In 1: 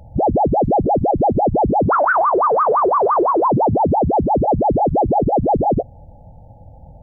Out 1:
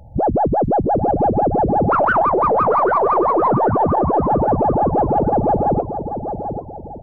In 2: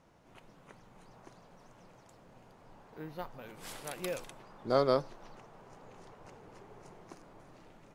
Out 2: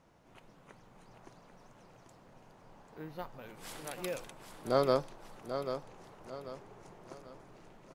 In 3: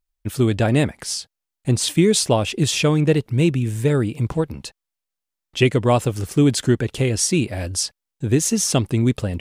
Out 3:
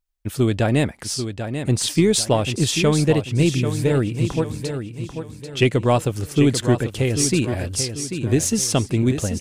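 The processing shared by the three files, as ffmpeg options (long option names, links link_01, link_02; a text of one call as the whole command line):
ffmpeg -i in.wav -af "aecho=1:1:790|1580|2370|3160:0.376|0.143|0.0543|0.0206,aeval=exprs='0.944*(cos(1*acos(clip(val(0)/0.944,-1,1)))-cos(1*PI/2))+0.0168*(cos(6*acos(clip(val(0)/0.944,-1,1)))-cos(6*PI/2))':channel_layout=same,volume=-1dB" out.wav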